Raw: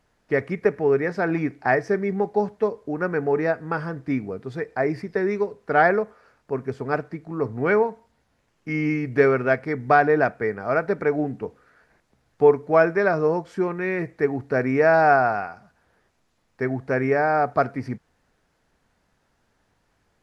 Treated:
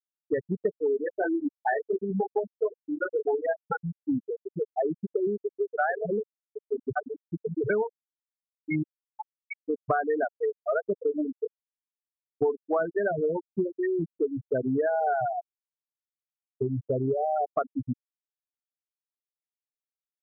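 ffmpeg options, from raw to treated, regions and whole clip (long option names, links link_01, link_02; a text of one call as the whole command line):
ffmpeg -i in.wav -filter_complex "[0:a]asettb=1/sr,asplit=3[link_01][link_02][link_03];[link_01]atrim=end=1.044[link_04];[link_02]atrim=start=1.04:end=3.57,asetpts=PTS-STARTPTS,afade=type=in:duration=0.004:curve=qsin,afade=type=out:start_time=2.526:duration=0.004:curve=qsin,highpass=frequency=320:poles=1,asplit=2[link_05][link_06];[link_06]adelay=21,volume=-4dB[link_07];[link_05][link_07]amix=inputs=2:normalize=0,atrim=end_sample=111573[link_08];[link_03]atrim=start=3.566[link_09];[link_04][link_08]acrossfade=duration=0.004:curve1=hsin:curve2=qsin[link_10];[link_10][link_09]acrossfade=duration=0.004:curve1=qsin:curve2=hsin,asettb=1/sr,asplit=3[link_11][link_12][link_13];[link_11]atrim=end=5.374[link_14];[link_12]atrim=start=5.37:end=7.7,asetpts=PTS-STARTPTS,afade=type=in:duration=0.004:curve=qsin,afade=type=out:start_time=2.326:duration=0.004:curve=qsin,acompressor=mode=upward:threshold=-23dB:ratio=2.5:attack=3.2:release=140:knee=2.83:detection=peak,acrossover=split=470|4600[link_15][link_16][link_17];[link_16]adelay=40[link_18];[link_15]adelay=200[link_19];[link_19][link_18][link_17]amix=inputs=3:normalize=0,atrim=end_sample=102753[link_20];[link_13]atrim=start=7.696[link_21];[link_14][link_20]acrossfade=duration=0.004:curve1=hsin:curve2=qsin[link_22];[link_22][link_21]acrossfade=duration=0.004:curve1=qsin:curve2=hsin,asettb=1/sr,asplit=3[link_23][link_24][link_25];[link_23]atrim=end=8.834[link_26];[link_24]atrim=start=8.83:end=9.69,asetpts=PTS-STARTPTS,afade=type=in:duration=0.004:curve=qsin,afade=type=out:start_time=0.856:duration=0.004:curve=qsin,aeval=exprs='abs(val(0))':channel_layout=same,highpass=1500[link_27];[link_25]atrim=start=9.686[link_28];[link_26][link_27]acrossfade=duration=0.004:curve1=hsin:curve2=qsin[link_29];[link_29][link_28]acrossfade=duration=0.004:curve1=qsin:curve2=hsin,asettb=1/sr,asplit=3[link_30][link_31][link_32];[link_30]atrim=end=14.884[link_33];[link_31]atrim=start=14.88:end=17.57,asetpts=PTS-STARTPTS,afade=type=in:duration=0.004:curve=qsin,afade=type=out:start_time=2.686:duration=0.004:curve=qsin,lowpass=frequency=1200:poles=1,lowshelf=frequency=120:width_type=q:width=1.5:gain=8[link_34];[link_32]atrim=start=17.566[link_35];[link_33][link_34]acrossfade=duration=0.004:curve1=hsin:curve2=qsin[link_36];[link_36][link_35]acrossfade=duration=0.004:curve1=qsin:curve2=hsin,lowpass=frequency=4000:poles=1,afftfilt=real='re*gte(hypot(re,im),0.316)':imag='im*gte(hypot(re,im),0.316)':win_size=1024:overlap=0.75,acompressor=threshold=-28dB:ratio=5,volume=3.5dB" out.wav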